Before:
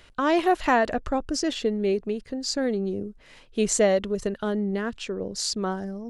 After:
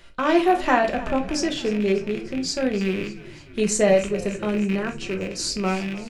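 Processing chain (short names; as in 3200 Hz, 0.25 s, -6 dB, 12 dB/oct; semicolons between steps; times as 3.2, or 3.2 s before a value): rattling part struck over -37 dBFS, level -23 dBFS; 3.6–5.67 notch 3400 Hz, Q 8.7; frequency-shifting echo 0.297 s, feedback 61%, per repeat -54 Hz, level -17.5 dB; reverb RT60 0.30 s, pre-delay 5 ms, DRR 2.5 dB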